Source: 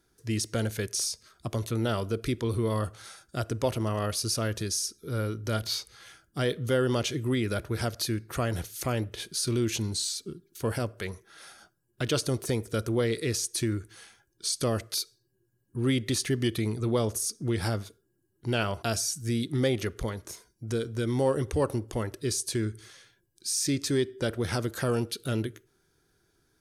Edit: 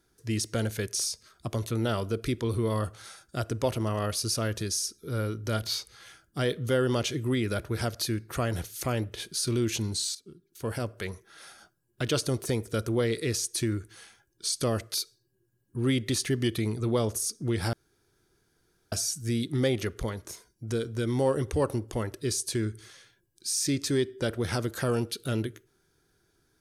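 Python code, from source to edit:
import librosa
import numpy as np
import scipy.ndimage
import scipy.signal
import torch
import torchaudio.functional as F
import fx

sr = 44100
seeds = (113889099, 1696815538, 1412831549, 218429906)

y = fx.edit(x, sr, fx.fade_in_from(start_s=10.15, length_s=0.84, floor_db=-14.5),
    fx.room_tone_fill(start_s=17.73, length_s=1.19), tone=tone)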